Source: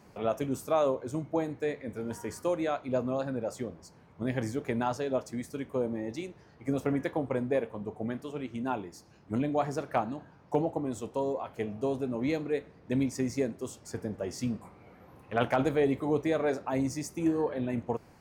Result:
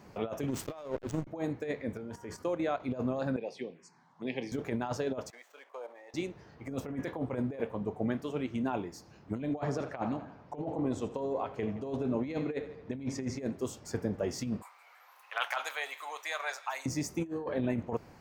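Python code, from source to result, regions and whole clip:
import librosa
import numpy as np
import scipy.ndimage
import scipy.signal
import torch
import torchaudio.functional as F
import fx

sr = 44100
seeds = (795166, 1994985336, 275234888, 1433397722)

y = fx.chain(x, sr, fx.high_shelf(hz=2200.0, db=8.5),
    fx.backlash(play_db=-31.5), at=(0.48, 1.27))
y = fx.chain(y, sr, fx.level_steps(step_db=11),
    fx.high_shelf(hz=7300.0, db=-7.0), at=(1.97, 2.8))
y = fx.chain(y, sr, fx.env_phaser(low_hz=360.0, high_hz=1400.0, full_db=-32.0),
    fx.cabinet(low_hz=200.0, low_slope=24, high_hz=8500.0, hz=(210.0, 300.0, 600.0, 1300.0, 2500.0), db=(-8, -9, -9, -6, 6)), at=(3.36, 4.52))
y = fx.chain(y, sr, fx.median_filter(points=9),
    fx.highpass(hz=630.0, slope=24),
    fx.level_steps(step_db=11), at=(5.3, 6.14))
y = fx.chain(y, sr, fx.air_absorb(metres=53.0),
    fx.echo_feedback(ms=83, feedback_pct=52, wet_db=-16), at=(9.53, 13.4))
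y = fx.chain(y, sr, fx.highpass(hz=910.0, slope=24),
    fx.high_shelf(hz=4600.0, db=9.0),
    fx.echo_wet_highpass(ms=164, feedback_pct=60, hz=2500.0, wet_db=-16.0), at=(14.62, 16.86))
y = fx.peak_eq(y, sr, hz=10000.0, db=-7.5, octaves=0.59)
y = fx.over_compress(y, sr, threshold_db=-32.0, ratio=-0.5)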